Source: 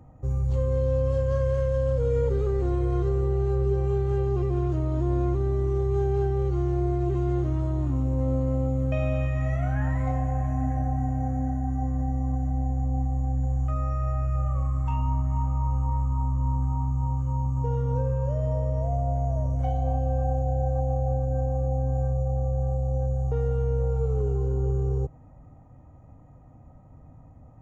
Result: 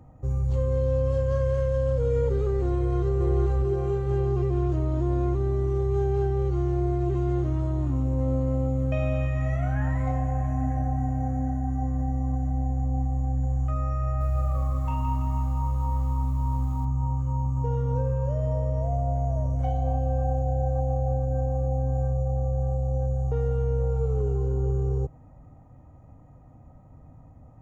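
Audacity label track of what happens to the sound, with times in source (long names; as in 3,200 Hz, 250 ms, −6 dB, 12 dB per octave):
2.760000	3.180000	delay throw 440 ms, feedback 60%, level −3 dB
14.040000	16.850000	feedback echo at a low word length 165 ms, feedback 55%, word length 9 bits, level −7 dB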